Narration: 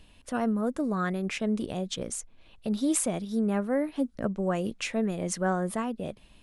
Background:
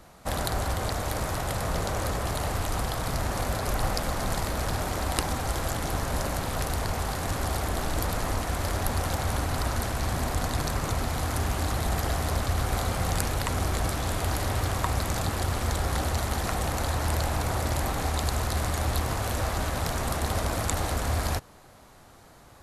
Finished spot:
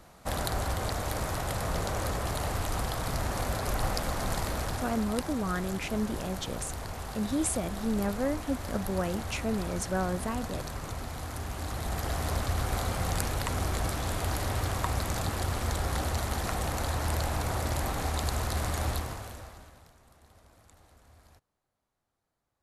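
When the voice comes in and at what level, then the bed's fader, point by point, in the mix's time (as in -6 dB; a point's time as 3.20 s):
4.50 s, -3.0 dB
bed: 4.53 s -2.5 dB
5.16 s -9 dB
11.46 s -9 dB
12.27 s -3 dB
18.89 s -3 dB
19.98 s -31 dB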